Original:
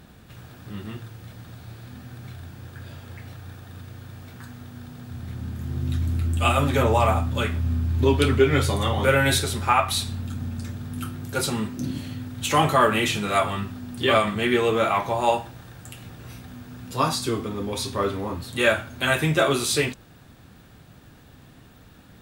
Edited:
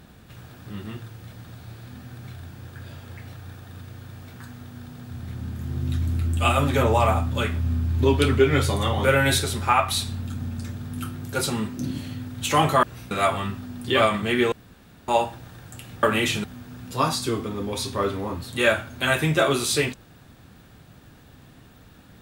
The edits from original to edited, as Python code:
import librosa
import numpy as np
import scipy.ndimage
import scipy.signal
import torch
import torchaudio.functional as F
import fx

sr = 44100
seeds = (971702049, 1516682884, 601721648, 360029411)

y = fx.edit(x, sr, fx.swap(start_s=12.83, length_s=0.41, other_s=16.16, other_length_s=0.28),
    fx.room_tone_fill(start_s=14.65, length_s=0.56), tone=tone)